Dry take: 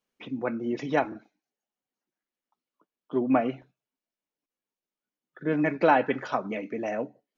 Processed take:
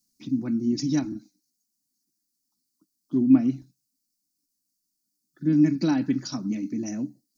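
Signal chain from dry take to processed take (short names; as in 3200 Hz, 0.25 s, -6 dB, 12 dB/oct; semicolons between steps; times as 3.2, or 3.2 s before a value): EQ curve 310 Hz 0 dB, 450 Hz -26 dB, 3200 Hz -17 dB, 4600 Hz +9 dB; gain +8 dB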